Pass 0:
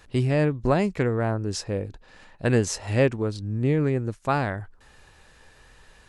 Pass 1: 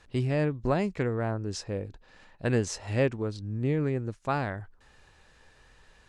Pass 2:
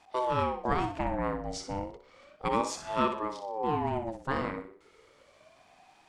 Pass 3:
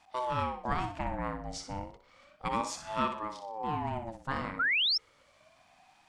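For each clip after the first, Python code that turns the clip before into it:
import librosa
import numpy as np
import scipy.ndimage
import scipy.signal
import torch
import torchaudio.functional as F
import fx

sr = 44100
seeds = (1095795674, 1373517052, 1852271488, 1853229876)

y1 = scipy.signal.sosfilt(scipy.signal.butter(2, 8500.0, 'lowpass', fs=sr, output='sos'), x)
y1 = y1 * librosa.db_to_amplitude(-5.0)
y2 = fx.room_flutter(y1, sr, wall_m=10.5, rt60_s=0.44)
y2 = fx.ring_lfo(y2, sr, carrier_hz=570.0, swing_pct=35, hz=0.33)
y3 = fx.spec_paint(y2, sr, seeds[0], shape='rise', start_s=4.59, length_s=0.39, low_hz=1300.0, high_hz=5600.0, level_db=-26.0)
y3 = fx.peak_eq(y3, sr, hz=410.0, db=-11.0, octaves=0.73)
y3 = y3 * librosa.db_to_amplitude(-1.5)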